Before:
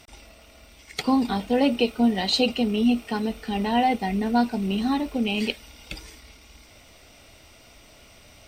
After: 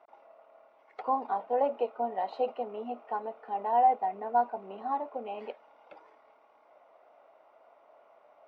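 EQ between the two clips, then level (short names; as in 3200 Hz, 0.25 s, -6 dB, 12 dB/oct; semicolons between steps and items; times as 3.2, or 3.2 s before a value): Butterworth band-pass 790 Hz, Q 1.3; 0.0 dB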